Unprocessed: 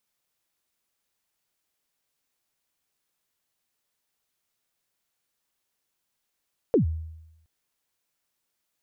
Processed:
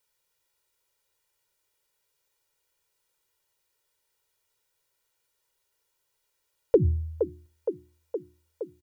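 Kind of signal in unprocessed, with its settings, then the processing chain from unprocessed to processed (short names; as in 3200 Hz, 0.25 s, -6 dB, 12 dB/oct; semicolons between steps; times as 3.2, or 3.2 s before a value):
kick drum length 0.72 s, from 530 Hz, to 80 Hz, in 0.114 s, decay 0.91 s, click off, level -14.5 dB
notches 60/120/180/240/300/360 Hz; comb 2.1 ms, depth 94%; on a send: band-limited delay 0.467 s, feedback 72%, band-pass 590 Hz, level -7 dB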